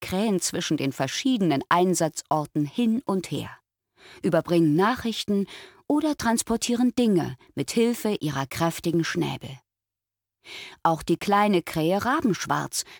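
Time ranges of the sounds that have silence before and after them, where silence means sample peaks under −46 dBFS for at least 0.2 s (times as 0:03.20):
0:04.01–0:09.58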